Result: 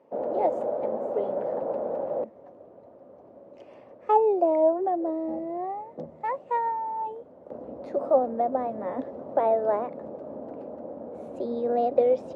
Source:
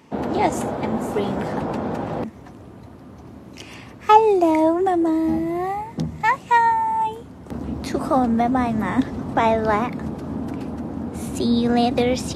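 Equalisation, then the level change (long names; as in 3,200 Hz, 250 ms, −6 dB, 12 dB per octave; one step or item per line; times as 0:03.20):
resonant band-pass 560 Hz, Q 6
+5.5 dB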